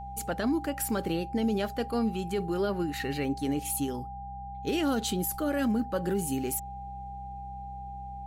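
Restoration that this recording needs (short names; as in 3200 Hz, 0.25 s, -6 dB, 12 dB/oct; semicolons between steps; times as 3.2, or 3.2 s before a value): de-hum 63.8 Hz, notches 3; notch 800 Hz, Q 30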